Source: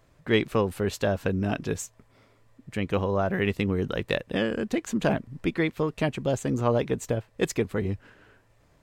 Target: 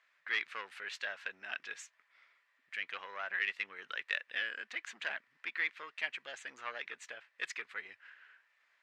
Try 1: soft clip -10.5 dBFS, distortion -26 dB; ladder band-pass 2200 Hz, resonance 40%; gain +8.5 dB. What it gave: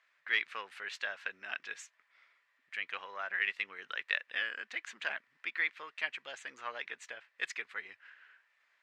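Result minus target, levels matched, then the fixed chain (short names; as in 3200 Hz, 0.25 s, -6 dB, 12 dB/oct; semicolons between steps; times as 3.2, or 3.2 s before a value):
soft clip: distortion -11 dB
soft clip -18 dBFS, distortion -15 dB; ladder band-pass 2200 Hz, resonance 40%; gain +8.5 dB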